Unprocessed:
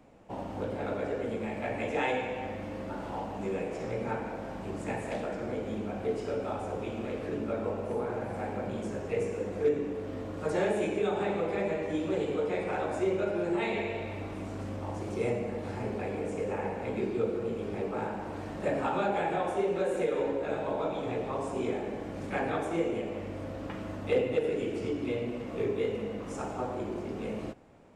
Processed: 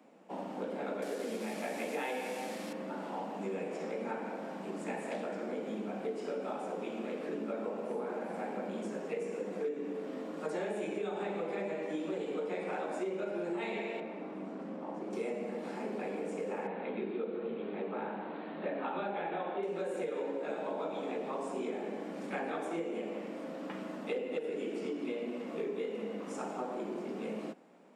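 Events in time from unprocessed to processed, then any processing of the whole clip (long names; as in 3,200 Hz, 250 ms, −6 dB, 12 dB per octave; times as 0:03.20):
0:01.02–0:02.73: linear delta modulator 64 kbit/s, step −37.5 dBFS
0:14.00–0:15.13: low-pass filter 1,300 Hz 6 dB per octave
0:16.67–0:19.63: elliptic low-pass filter 3,900 Hz
whole clip: Butterworth high-pass 170 Hz 72 dB per octave; notch filter 6,300 Hz, Q 29; downward compressor 5 to 1, threshold −31 dBFS; level −2 dB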